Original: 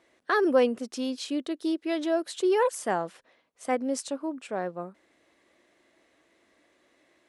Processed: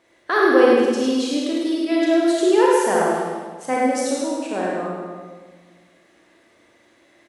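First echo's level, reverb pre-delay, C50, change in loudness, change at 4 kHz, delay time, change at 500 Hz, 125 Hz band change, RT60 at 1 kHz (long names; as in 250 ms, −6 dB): −4.5 dB, 30 ms, −3.5 dB, +9.0 dB, +9.0 dB, 103 ms, +9.0 dB, +9.0 dB, 1.4 s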